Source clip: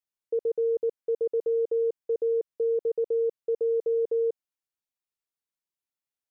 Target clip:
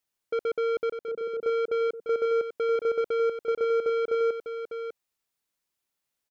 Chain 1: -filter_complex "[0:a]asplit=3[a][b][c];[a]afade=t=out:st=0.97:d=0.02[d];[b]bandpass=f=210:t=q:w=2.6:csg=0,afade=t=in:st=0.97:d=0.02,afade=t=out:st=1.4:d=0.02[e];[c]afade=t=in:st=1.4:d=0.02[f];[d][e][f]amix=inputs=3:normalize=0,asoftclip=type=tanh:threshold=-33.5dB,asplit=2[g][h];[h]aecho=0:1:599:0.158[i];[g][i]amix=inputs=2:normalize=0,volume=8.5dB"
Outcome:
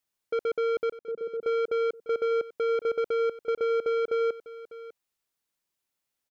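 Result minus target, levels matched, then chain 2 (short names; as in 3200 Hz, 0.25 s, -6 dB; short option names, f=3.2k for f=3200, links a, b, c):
echo-to-direct -8 dB
-filter_complex "[0:a]asplit=3[a][b][c];[a]afade=t=out:st=0.97:d=0.02[d];[b]bandpass=f=210:t=q:w=2.6:csg=0,afade=t=in:st=0.97:d=0.02,afade=t=out:st=1.4:d=0.02[e];[c]afade=t=in:st=1.4:d=0.02[f];[d][e][f]amix=inputs=3:normalize=0,asoftclip=type=tanh:threshold=-33.5dB,asplit=2[g][h];[h]aecho=0:1:599:0.398[i];[g][i]amix=inputs=2:normalize=0,volume=8.5dB"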